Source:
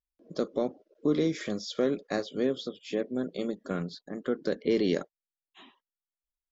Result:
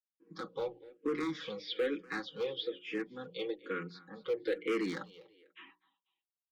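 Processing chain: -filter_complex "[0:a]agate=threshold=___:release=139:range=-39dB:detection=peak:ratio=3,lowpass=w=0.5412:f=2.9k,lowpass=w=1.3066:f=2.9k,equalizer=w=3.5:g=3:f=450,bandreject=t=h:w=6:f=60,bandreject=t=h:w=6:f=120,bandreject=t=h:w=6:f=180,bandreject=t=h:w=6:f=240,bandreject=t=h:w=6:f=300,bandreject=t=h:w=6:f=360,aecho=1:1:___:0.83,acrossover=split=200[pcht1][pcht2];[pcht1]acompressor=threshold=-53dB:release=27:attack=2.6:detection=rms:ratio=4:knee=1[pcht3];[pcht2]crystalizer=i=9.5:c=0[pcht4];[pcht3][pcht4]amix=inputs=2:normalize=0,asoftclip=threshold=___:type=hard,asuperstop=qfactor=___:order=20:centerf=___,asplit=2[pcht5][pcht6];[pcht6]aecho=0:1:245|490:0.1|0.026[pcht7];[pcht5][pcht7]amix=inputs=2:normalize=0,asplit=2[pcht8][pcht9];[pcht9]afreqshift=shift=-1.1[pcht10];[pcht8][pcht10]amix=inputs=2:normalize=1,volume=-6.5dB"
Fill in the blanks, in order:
-59dB, 6.2, -19dB, 4.5, 660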